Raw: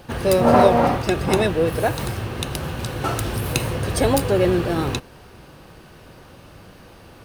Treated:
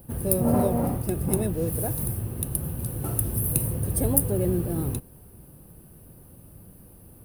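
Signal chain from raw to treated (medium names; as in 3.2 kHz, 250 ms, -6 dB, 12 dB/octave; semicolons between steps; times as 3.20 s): FFT filter 180 Hz 0 dB, 1.5 kHz -18 dB, 3.8 kHz -19 dB, 7.3 kHz -13 dB, 10 kHz +11 dB; 1.53–2.03 s: modulation noise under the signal 27 dB; trim -2 dB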